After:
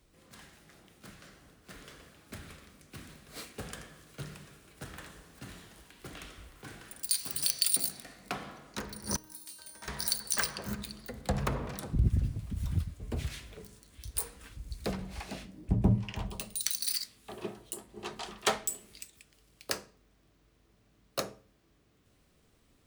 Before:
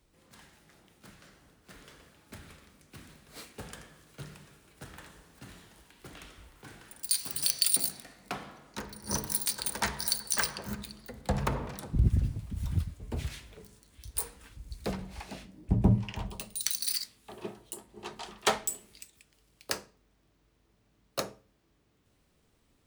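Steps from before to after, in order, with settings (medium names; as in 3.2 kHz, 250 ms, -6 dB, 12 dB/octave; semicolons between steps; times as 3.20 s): band-stop 890 Hz, Q 12; in parallel at -1 dB: compression, threshold -38 dBFS, peak gain reduction 19 dB; 9.16–9.88 s: on the sum: feedback comb 310 Hz, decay 0.68 s, mix 90%; trim -3 dB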